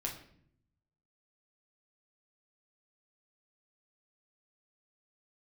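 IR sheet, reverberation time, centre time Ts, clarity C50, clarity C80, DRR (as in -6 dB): 0.60 s, 24 ms, 8.0 dB, 11.5 dB, -0.5 dB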